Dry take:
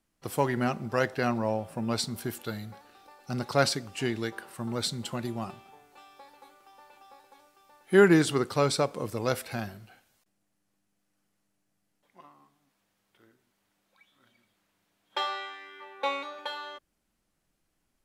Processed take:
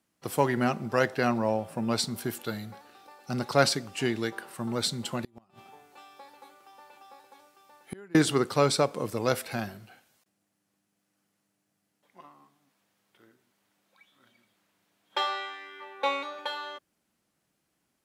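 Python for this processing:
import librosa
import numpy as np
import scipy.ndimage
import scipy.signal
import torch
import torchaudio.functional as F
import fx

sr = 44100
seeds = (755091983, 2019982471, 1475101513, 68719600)

y = scipy.signal.sosfilt(scipy.signal.butter(2, 110.0, 'highpass', fs=sr, output='sos'), x)
y = fx.gate_flip(y, sr, shuts_db=-24.0, range_db=-32, at=(5.24, 8.15))
y = y * 10.0 ** (2.0 / 20.0)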